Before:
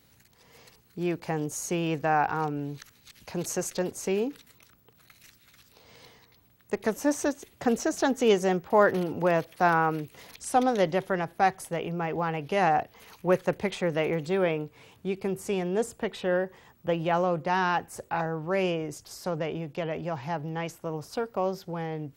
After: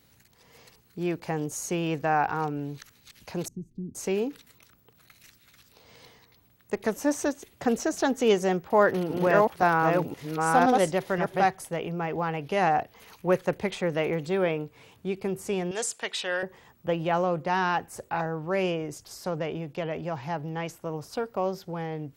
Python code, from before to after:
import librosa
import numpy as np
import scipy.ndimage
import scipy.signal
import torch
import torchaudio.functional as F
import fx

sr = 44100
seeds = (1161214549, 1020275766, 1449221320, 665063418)

y = fx.cheby2_lowpass(x, sr, hz=530.0, order=4, stop_db=40, at=(3.48, 3.95))
y = fx.reverse_delay(y, sr, ms=520, wet_db=-1.5, at=(8.58, 11.46))
y = fx.weighting(y, sr, curve='ITU-R 468', at=(15.71, 16.43))